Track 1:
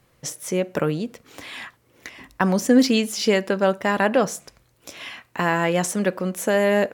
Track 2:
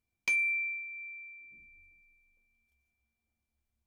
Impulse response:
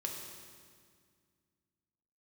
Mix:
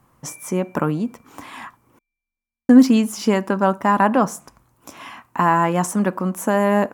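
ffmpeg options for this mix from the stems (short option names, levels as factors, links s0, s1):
-filter_complex "[0:a]volume=1.12,asplit=3[s0][s1][s2];[s0]atrim=end=1.99,asetpts=PTS-STARTPTS,afade=t=out:st=1.986:d=0.004:c=hsin[s3];[s1]atrim=start=1.99:end=2.69,asetpts=PTS-STARTPTS,volume=0[s4];[s2]atrim=start=2.69,asetpts=PTS-STARTPTS,afade=t=in:d=0.004:c=hsin[s5];[s3][s4][s5]concat=n=3:v=0:a=1[s6];[1:a]volume=0.2[s7];[s6][s7]amix=inputs=2:normalize=0,equalizer=f=250:t=o:w=1:g=6,equalizer=f=500:t=o:w=1:g=-7,equalizer=f=1000:t=o:w=1:g=11,equalizer=f=2000:t=o:w=1:g=-5,equalizer=f=4000:t=o:w=1:g=-9"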